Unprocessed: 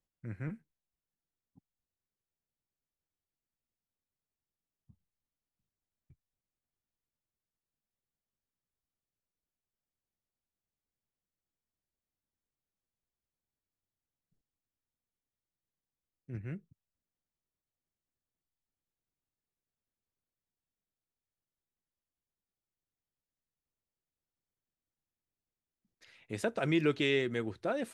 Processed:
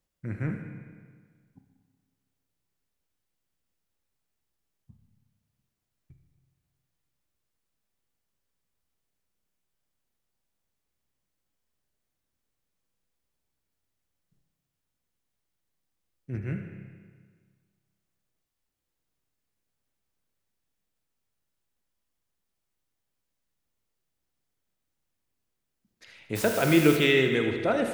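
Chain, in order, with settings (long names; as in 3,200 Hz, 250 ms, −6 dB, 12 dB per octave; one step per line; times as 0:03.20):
0:26.35–0:26.96: background noise white −45 dBFS
delay with a high-pass on its return 78 ms, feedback 56%, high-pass 1,600 Hz, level −9 dB
spring reverb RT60 1.7 s, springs 30/46 ms, chirp 50 ms, DRR 5 dB
level +7.5 dB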